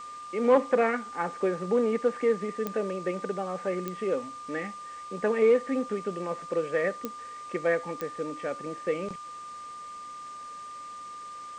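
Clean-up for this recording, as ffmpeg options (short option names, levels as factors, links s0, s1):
-af "adeclick=t=4,bandreject=f=1200:w=30,afwtdn=0.0025"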